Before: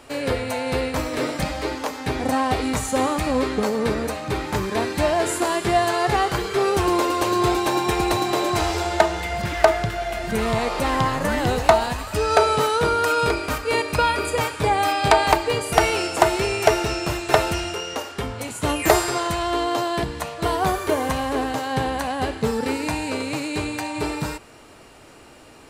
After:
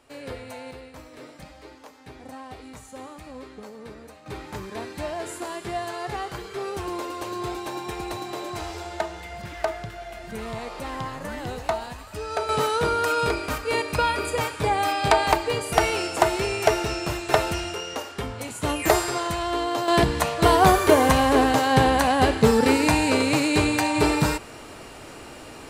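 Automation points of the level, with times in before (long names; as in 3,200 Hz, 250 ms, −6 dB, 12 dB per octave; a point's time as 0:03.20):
−12.5 dB
from 0:00.71 −19 dB
from 0:04.26 −11 dB
from 0:12.49 −3 dB
from 0:19.88 +5.5 dB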